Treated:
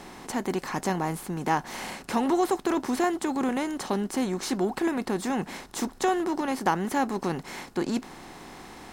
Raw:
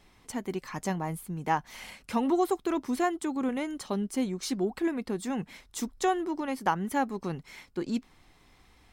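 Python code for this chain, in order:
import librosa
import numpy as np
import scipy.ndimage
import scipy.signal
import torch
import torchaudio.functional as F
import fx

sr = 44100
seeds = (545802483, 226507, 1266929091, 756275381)

y = fx.bin_compress(x, sr, power=0.6)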